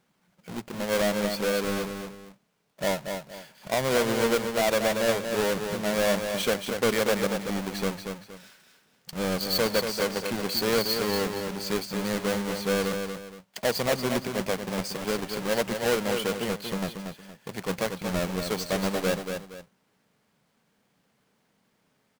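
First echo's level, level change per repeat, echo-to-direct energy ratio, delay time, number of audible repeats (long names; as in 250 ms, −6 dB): −6.5 dB, −10.0 dB, −6.0 dB, 234 ms, 2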